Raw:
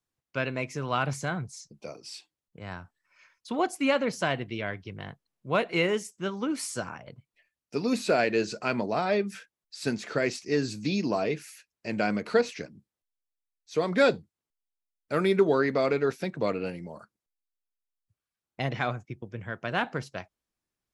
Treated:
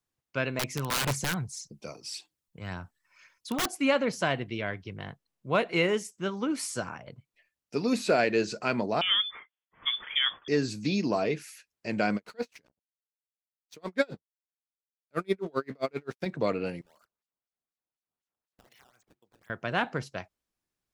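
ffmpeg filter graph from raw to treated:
-filter_complex "[0:a]asettb=1/sr,asplit=3[a][b][c];[a]atrim=end=0.594[d];[b]atrim=start=0.59:end=3.66,asetpts=PTS-STARTPTS,afade=t=in:d=0.004:c=qsin,afade=t=out:st=3.066:d=0.004:c=qsin,aphaser=in_gain=1:out_gain=1:delay=1.2:decay=0.35:speed=1.8:type=triangular,highshelf=f=5.3k:g=6,aeval=exprs='(mod(12.6*val(0)+1,2)-1)/12.6':c=same[e];[c]atrim=start=3.656[f];[d][e]acrossfade=d=0.004:c1=hsin:c2=qsin[g];[g][f]acrossfade=d=0.004:c1=qsin:c2=hsin,asettb=1/sr,asplit=3[h][i][j];[h]atrim=end=9.014[k];[i]atrim=start=9.01:end=10.48,asetpts=PTS-STARTPTS,afade=t=in:d=0.004:c=qsin,afade=t=out:st=1.466:d=0.004:c=qsin,highpass=200,lowpass=f=3.1k:t=q:w=0.5098,lowpass=f=3.1k:t=q:w=0.6013,lowpass=f=3.1k:t=q:w=0.9,lowpass=f=3.1k:t=q:w=2.563,afreqshift=-3700[l];[j]atrim=start=10.476[m];[k][l]acrossfade=d=0.004:c1=hsin:c2=qsin[n];[n][m]acrossfade=d=0.004:c1=qsin:c2=hsin,asettb=1/sr,asplit=3[o][p][q];[o]atrim=end=12.164[r];[p]atrim=start=12.16:end=16.26,asetpts=PTS-STARTPTS,afade=t=in:d=0.004:c=qsin,afade=t=out:st=4.096:d=0.004:c=qsin,aeval=exprs='sgn(val(0))*max(abs(val(0))-0.00398,0)':c=same,aeval=exprs='val(0)*pow(10,-39*(0.5-0.5*cos(2*PI*7.6*n/s))/20)':c=same[s];[q]atrim=start=16.256[t];[r][s]acrossfade=d=0.004:c1=hsin:c2=qsin[u];[u][t]acrossfade=d=0.004:c1=qsin:c2=hsin,asettb=1/sr,asplit=3[v][w][x];[v]atrim=end=16.814[y];[w]atrim=start=16.81:end=19.5,asetpts=PTS-STARTPTS,afade=t=in:d=0.004:c=qsin,afade=t=out:st=2.686:d=0.004:c=qsin,bandpass=f=6.5k:t=q:w=1,acrusher=samples=12:mix=1:aa=0.000001:lfo=1:lforange=19.2:lforate=4,acompressor=threshold=-56dB:ratio=10:attack=3.2:release=140:knee=1:detection=peak[z];[x]atrim=start=19.496[aa];[y][z]acrossfade=d=0.004:c1=hsin:c2=qsin[ab];[ab][aa]acrossfade=d=0.004:c1=qsin:c2=hsin"

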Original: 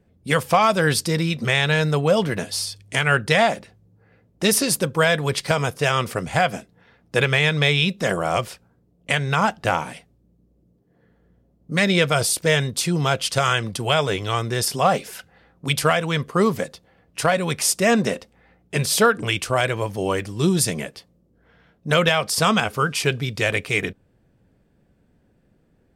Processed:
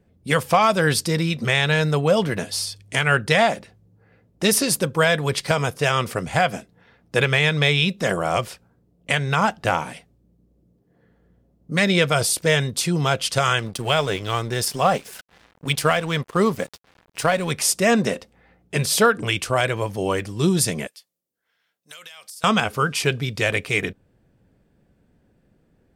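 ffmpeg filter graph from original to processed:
-filter_complex "[0:a]asettb=1/sr,asplit=3[a][b][c];[a]atrim=end=13.594[d];[b]atrim=start=13.59:end=17.5,asetpts=PTS-STARTPTS,afade=t=in:d=0.004:c=qsin,afade=t=out:st=3.906:d=0.004:c=qsin,acompressor=mode=upward:threshold=-28dB:ratio=2.5:attack=3.2:release=140:knee=2.83:detection=peak,aeval=exprs='sgn(val(0))*max(abs(val(0))-0.0112,0)':c=same[e];[c]atrim=start=17.496[f];[d][e]acrossfade=d=0.004:c1=hsin:c2=qsin[g];[g][f]acrossfade=d=0.004:c1=qsin:c2=hsin,asettb=1/sr,asplit=3[h][i][j];[h]atrim=end=20.874[k];[i]atrim=start=20.87:end=22.44,asetpts=PTS-STARTPTS,afade=t=in:d=0.004:c=qsin,afade=t=out:st=1.566:d=0.004:c=qsin,aderivative,acompressor=threshold=-37dB:ratio=8:attack=3.2:release=140:knee=1:detection=peak[l];[j]atrim=start=22.436[m];[k][l]acrossfade=d=0.004:c1=hsin:c2=qsin[n];[n][m]acrossfade=d=0.004:c1=qsin:c2=hsin"

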